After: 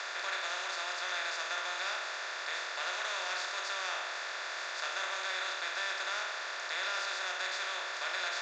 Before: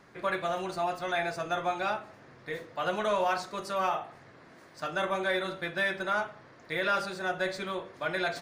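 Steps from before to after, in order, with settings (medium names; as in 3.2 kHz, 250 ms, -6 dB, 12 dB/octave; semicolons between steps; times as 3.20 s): spectral levelling over time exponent 0.2; Chebyshev band-pass 330–7100 Hz, order 5; differentiator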